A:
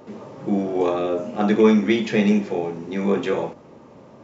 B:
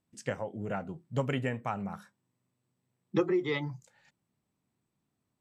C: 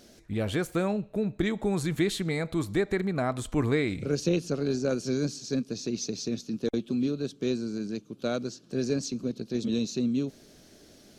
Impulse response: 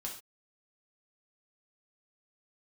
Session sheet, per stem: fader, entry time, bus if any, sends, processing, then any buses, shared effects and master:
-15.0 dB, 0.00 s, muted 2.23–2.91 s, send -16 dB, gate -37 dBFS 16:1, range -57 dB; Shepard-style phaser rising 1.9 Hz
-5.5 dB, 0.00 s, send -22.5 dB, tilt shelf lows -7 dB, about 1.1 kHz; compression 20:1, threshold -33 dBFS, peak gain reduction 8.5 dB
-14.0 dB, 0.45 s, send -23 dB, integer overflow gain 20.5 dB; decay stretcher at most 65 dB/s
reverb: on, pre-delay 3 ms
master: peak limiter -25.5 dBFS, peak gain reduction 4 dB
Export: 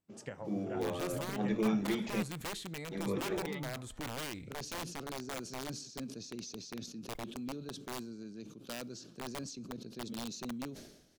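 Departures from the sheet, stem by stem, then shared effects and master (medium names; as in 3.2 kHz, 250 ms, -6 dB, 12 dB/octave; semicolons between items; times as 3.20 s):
stem B: missing tilt shelf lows -7 dB, about 1.1 kHz; master: missing peak limiter -25.5 dBFS, peak gain reduction 4 dB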